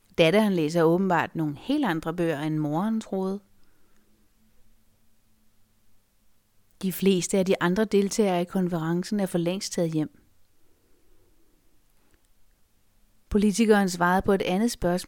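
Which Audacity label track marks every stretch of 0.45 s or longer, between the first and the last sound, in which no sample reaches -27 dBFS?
3.360000	6.810000	silence
10.040000	13.310000	silence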